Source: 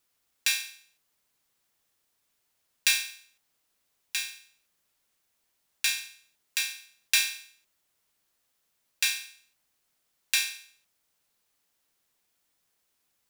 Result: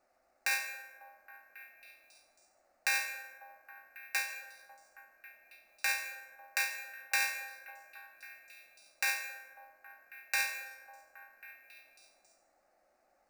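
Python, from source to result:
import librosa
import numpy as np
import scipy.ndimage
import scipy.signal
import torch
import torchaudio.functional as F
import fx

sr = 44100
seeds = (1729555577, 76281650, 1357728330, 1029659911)

p1 = fx.band_shelf(x, sr, hz=660.0, db=13.5, octaves=1.7)
p2 = fx.over_compress(p1, sr, threshold_db=-27.0, ratio=-0.5)
p3 = p1 + (p2 * 10.0 ** (-1.0 / 20.0))
p4 = scipy.ndimage.gaussian_filter1d(p3, 1.6, mode='constant')
p5 = fx.fixed_phaser(p4, sr, hz=660.0, stages=8)
p6 = p5 + fx.echo_stepped(p5, sr, ms=273, hz=430.0, octaves=0.7, feedback_pct=70, wet_db=-9, dry=0)
p7 = fx.rev_plate(p6, sr, seeds[0], rt60_s=1.5, hf_ratio=0.35, predelay_ms=110, drr_db=10.5)
y = np.repeat(p7[::3], 3)[:len(p7)]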